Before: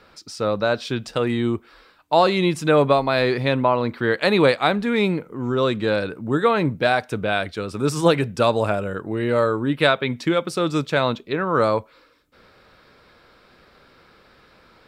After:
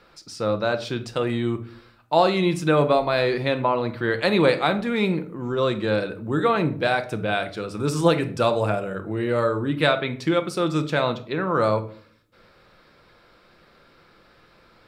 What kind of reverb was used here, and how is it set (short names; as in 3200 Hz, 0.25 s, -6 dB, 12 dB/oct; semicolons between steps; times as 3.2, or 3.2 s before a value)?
shoebox room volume 570 m³, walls furnished, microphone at 0.82 m; gain -3 dB